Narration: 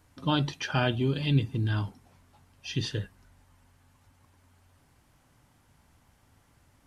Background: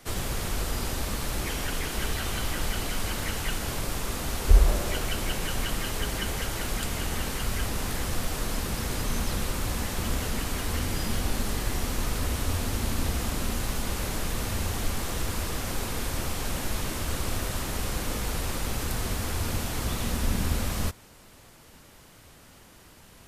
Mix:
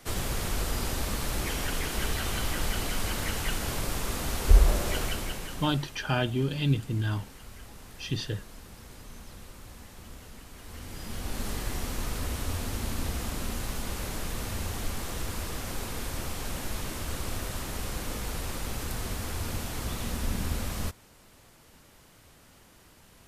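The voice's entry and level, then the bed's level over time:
5.35 s, -1.0 dB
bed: 5.03 s -0.5 dB
6.03 s -17.5 dB
10.52 s -17.5 dB
11.46 s -4 dB

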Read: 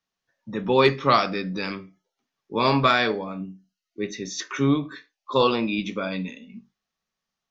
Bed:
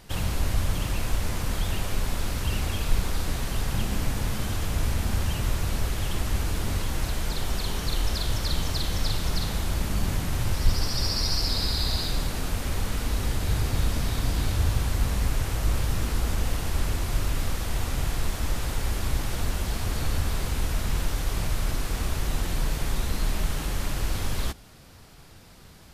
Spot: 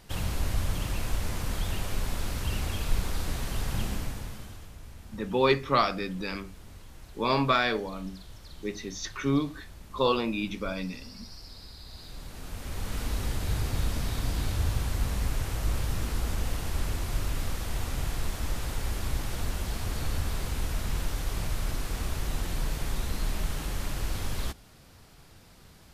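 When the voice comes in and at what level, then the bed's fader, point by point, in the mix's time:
4.65 s, -5.0 dB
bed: 3.87 s -3.5 dB
4.78 s -20.5 dB
11.84 s -20.5 dB
12.99 s -4 dB

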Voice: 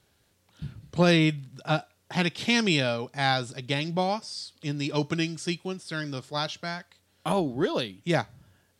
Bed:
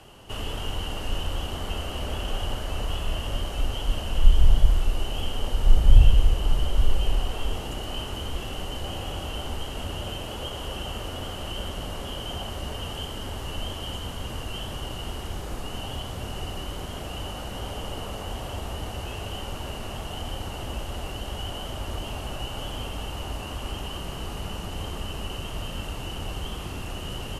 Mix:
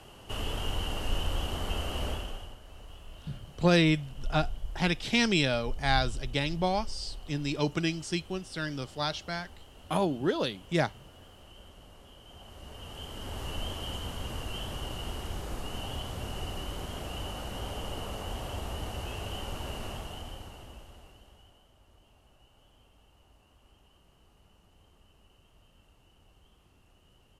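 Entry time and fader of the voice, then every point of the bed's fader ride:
2.65 s, -2.0 dB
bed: 2.08 s -2 dB
2.58 s -19.5 dB
12.23 s -19.5 dB
13.42 s -3.5 dB
19.87 s -3.5 dB
21.69 s -29 dB

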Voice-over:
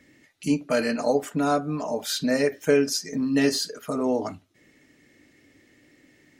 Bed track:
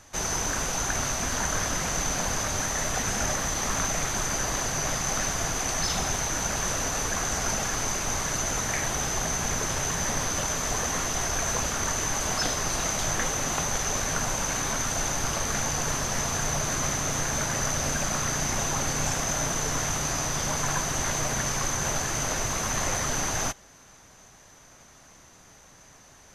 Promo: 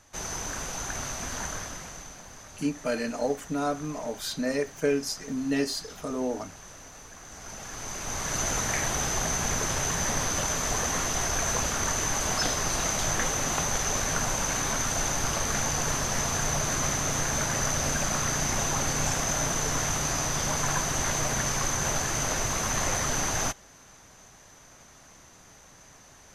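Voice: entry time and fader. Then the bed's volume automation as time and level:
2.15 s, -5.5 dB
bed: 1.45 s -6 dB
2.23 s -18.5 dB
7.21 s -18.5 dB
8.42 s 0 dB

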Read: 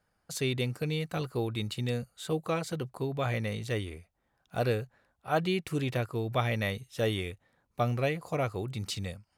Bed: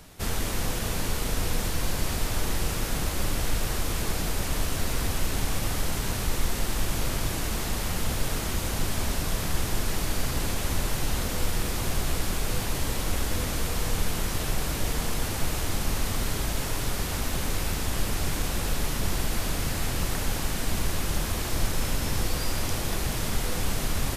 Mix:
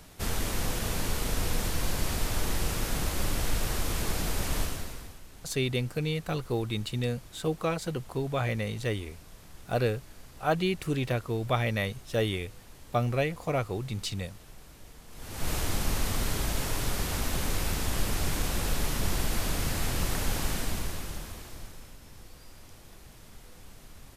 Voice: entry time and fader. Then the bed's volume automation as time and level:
5.15 s, +1.5 dB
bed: 4.61 s -2 dB
5.22 s -22.5 dB
15.07 s -22.5 dB
15.50 s -1.5 dB
20.53 s -1.5 dB
21.98 s -22.5 dB

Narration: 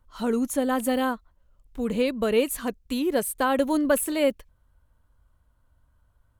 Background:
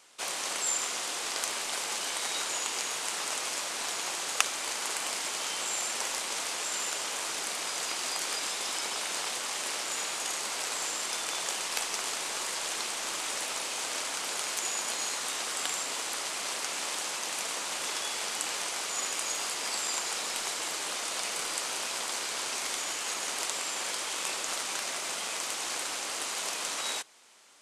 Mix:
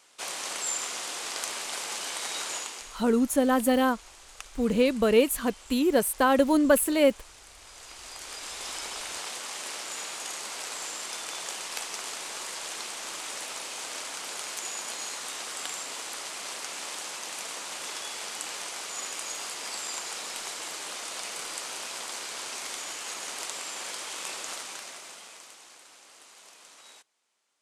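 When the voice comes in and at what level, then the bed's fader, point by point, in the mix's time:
2.80 s, +1.5 dB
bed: 2.56 s -1 dB
3.06 s -17 dB
7.54 s -17 dB
8.68 s -3 dB
24.48 s -3 dB
25.78 s -18.5 dB

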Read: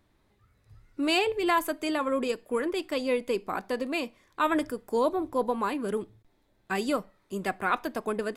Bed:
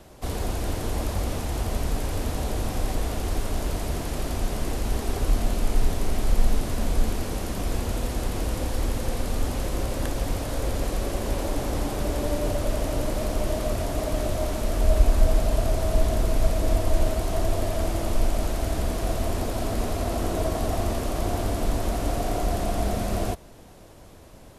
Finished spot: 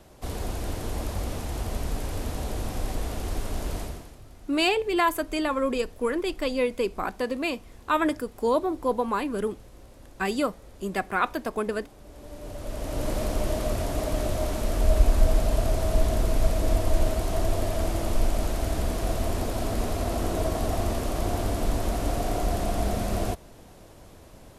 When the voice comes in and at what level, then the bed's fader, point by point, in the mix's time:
3.50 s, +2.0 dB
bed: 3.81 s -3.5 dB
4.21 s -22 dB
12.02 s -22 dB
13.10 s -1 dB

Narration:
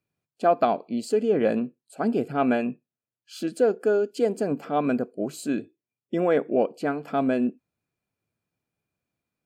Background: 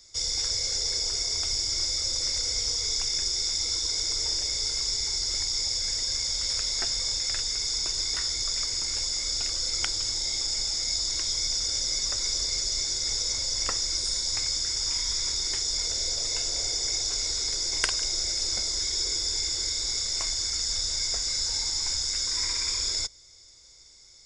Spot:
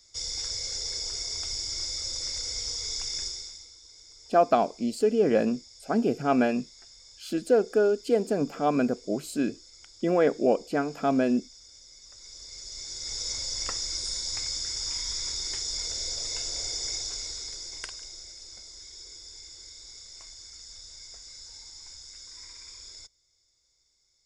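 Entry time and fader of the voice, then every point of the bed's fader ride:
3.90 s, -0.5 dB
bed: 3.24 s -5 dB
3.74 s -23.5 dB
11.97 s -23.5 dB
13.28 s -4 dB
16.90 s -4 dB
18.39 s -17.5 dB

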